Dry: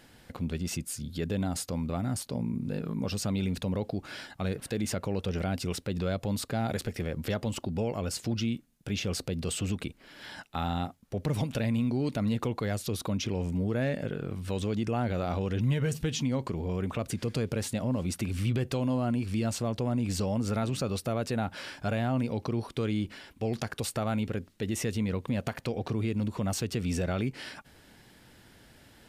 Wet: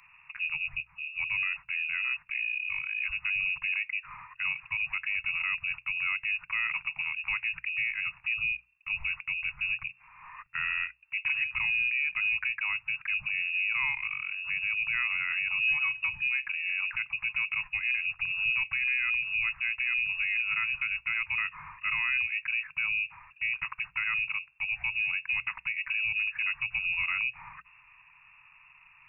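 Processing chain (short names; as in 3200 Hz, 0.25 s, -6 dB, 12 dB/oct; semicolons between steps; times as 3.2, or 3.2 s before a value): inverted band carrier 2700 Hz; Chebyshev band-stop 150–960 Hz, order 3; notches 60/120/180 Hz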